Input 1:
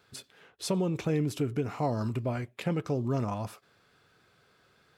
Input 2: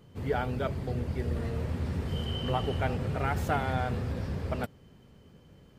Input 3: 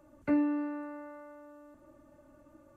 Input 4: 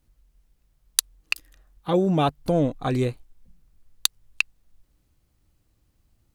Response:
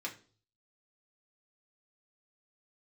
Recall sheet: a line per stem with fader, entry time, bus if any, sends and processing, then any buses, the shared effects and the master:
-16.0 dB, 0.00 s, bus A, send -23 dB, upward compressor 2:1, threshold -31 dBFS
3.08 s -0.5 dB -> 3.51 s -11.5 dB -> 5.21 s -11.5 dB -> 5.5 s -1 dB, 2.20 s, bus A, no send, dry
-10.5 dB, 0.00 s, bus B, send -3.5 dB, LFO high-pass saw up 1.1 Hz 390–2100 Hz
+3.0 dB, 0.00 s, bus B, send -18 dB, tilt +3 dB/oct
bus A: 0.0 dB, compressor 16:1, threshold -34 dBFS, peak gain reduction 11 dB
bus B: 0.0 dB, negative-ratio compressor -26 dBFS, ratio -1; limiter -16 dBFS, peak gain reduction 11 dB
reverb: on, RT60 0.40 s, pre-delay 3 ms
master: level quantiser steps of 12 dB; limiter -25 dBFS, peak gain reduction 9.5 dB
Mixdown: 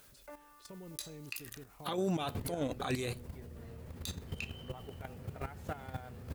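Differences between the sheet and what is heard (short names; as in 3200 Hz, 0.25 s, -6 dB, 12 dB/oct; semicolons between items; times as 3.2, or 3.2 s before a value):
stem 2 -0.5 dB -> +11.0 dB; stem 3 -10.5 dB -> -22.0 dB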